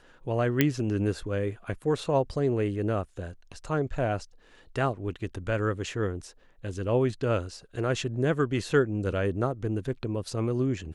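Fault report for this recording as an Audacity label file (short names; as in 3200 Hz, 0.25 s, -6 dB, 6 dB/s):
0.610000	0.610000	pop -7 dBFS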